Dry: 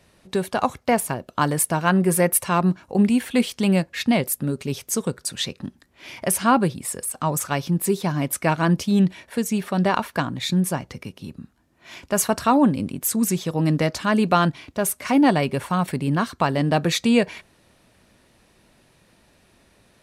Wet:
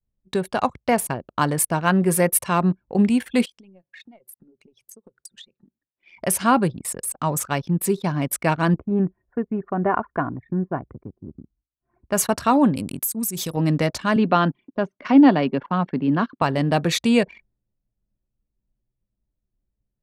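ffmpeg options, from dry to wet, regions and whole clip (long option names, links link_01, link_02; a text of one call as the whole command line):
ffmpeg -i in.wav -filter_complex "[0:a]asettb=1/sr,asplit=3[link_01][link_02][link_03];[link_01]atrim=end=3.454[link_04];[link_02]atrim=start=3.45:end=6.17,asetpts=PTS-STARTPTS,afade=type=in:duration=0.004:curve=qsin,afade=type=out:start_time=2.716:duration=0.004:curve=qsin,highpass=110,acompressor=threshold=-33dB:ratio=12:attack=3.2:release=140:knee=1:detection=peak,lowshelf=frequency=290:gain=-11.5[link_05];[link_03]atrim=start=6.166[link_06];[link_04][link_05]acrossfade=duration=0.004:curve1=hsin:curve2=qsin[link_07];[link_07][link_06]acrossfade=duration=0.004:curve1=qsin:curve2=hsin,asettb=1/sr,asplit=3[link_08][link_09][link_10];[link_08]atrim=end=8.744[link_11];[link_09]atrim=start=8.74:end=12.04,asetpts=PTS-STARTPTS,afade=type=in:duration=0.004:curve=qsin,afade=type=out:start_time=3.296:duration=0.004:curve=qsin,lowpass=frequency=1600:width=0.5412,lowpass=frequency=1600:width=1.3066,aecho=1:1:2.8:0.39,atrim=end_sample=145530[link_12];[link_10]atrim=start=12.036[link_13];[link_11][link_12]acrossfade=duration=0.004:curve1=hsin:curve2=qsin[link_14];[link_14][link_13]acrossfade=duration=0.004:curve1=qsin:curve2=hsin,asettb=1/sr,asplit=3[link_15][link_16][link_17];[link_15]atrim=end=12.764[link_18];[link_16]atrim=start=12.76:end=13.57,asetpts=PTS-STARTPTS,afade=type=in:duration=0.004:curve=qsin,afade=type=out:start_time=0.806:duration=0.004:curve=qsin,aemphasis=mode=production:type=75fm,acompressor=threshold=-22dB:ratio=8:attack=3.2:release=140:knee=1:detection=peak[link_19];[link_17]atrim=start=13.566[link_20];[link_18][link_19]acrossfade=duration=0.004:curve1=hsin:curve2=qsin[link_21];[link_21][link_20]acrossfade=duration=0.004:curve1=qsin:curve2=hsin,asettb=1/sr,asplit=3[link_22][link_23][link_24];[link_22]atrim=end=14.164[link_25];[link_23]atrim=start=14.16:end=16.42,asetpts=PTS-STARTPTS,afade=type=in:duration=0.004:curve=qsin,afade=type=out:start_time=2.256:duration=0.004:curve=qsin,highpass=frequency=150:width=0.5412,highpass=frequency=150:width=1.3066,equalizer=frequency=270:width_type=q:width=4:gain=6,equalizer=frequency=2300:width_type=q:width=4:gain=-4,equalizer=frequency=4000:width_type=q:width=4:gain=-4,lowpass=frequency=4600:width=0.5412,lowpass=frequency=4600:width=1.3066,deesser=0.35[link_26];[link_24]atrim=start=16.416[link_27];[link_25][link_26]acrossfade=duration=0.004:curve1=hsin:curve2=qsin[link_28];[link_28][link_27]acrossfade=duration=0.004:curve1=qsin:curve2=hsin,agate=range=-33dB:threshold=-52dB:ratio=3:detection=peak,anlmdn=10" out.wav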